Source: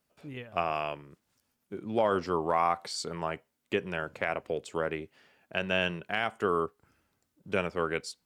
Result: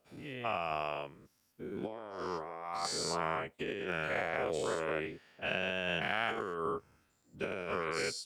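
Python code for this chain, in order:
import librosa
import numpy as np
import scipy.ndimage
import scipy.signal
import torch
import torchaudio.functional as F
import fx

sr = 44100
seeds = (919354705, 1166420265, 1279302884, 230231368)

y = fx.spec_dilate(x, sr, span_ms=240)
y = fx.over_compress(y, sr, threshold_db=-26.0, ratio=-0.5)
y = y * librosa.db_to_amplitude(-9.0)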